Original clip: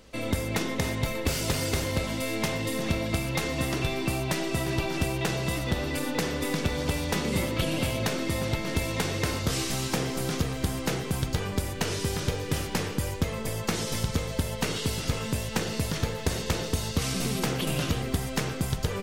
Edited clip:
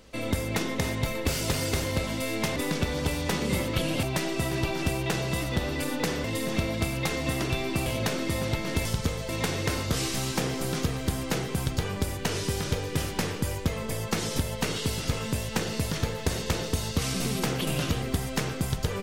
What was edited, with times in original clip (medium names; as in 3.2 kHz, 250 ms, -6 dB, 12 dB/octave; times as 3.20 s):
2.56–4.18 s: swap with 6.39–7.86 s
13.95–14.39 s: move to 8.85 s